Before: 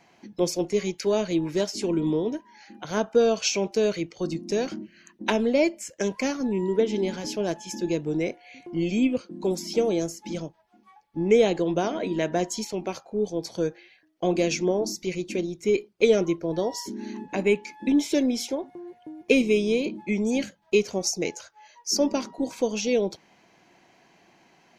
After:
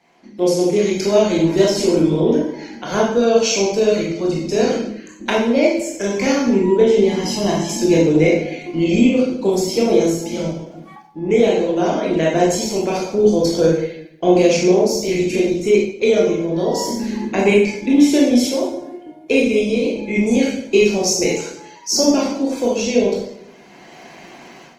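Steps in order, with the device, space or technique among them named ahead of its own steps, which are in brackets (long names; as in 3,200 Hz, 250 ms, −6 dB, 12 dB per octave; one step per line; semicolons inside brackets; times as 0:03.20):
0:07.08–0:07.68: comb filter 1 ms, depth 67%
far-field microphone of a smart speaker (convolution reverb RT60 0.75 s, pre-delay 18 ms, DRR −3.5 dB; high-pass filter 140 Hz 12 dB per octave; automatic gain control gain up to 15.5 dB; level −1.5 dB; Opus 20 kbit/s 48,000 Hz)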